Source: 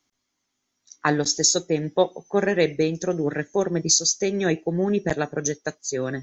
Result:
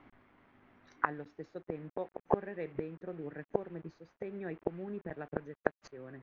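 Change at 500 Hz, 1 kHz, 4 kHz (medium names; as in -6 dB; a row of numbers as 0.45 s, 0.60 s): -15.0 dB, -9.5 dB, under -35 dB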